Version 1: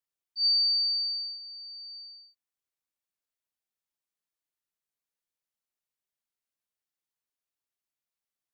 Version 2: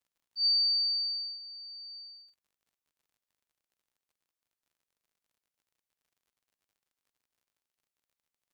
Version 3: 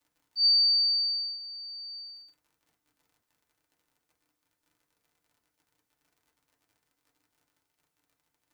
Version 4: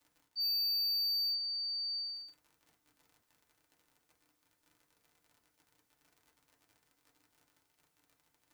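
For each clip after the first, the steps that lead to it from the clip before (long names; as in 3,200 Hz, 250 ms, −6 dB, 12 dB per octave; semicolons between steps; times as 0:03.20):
surface crackle 62 per second −61 dBFS; level −2 dB
feedback delay network reverb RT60 0.3 s, low-frequency decay 1.45×, high-frequency decay 0.35×, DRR −2 dB; level +6.5 dB
reversed playback; downward compressor 5 to 1, threshold −33 dBFS, peak gain reduction 12 dB; reversed playback; hard clipping −35 dBFS, distortion −12 dB; level +3.5 dB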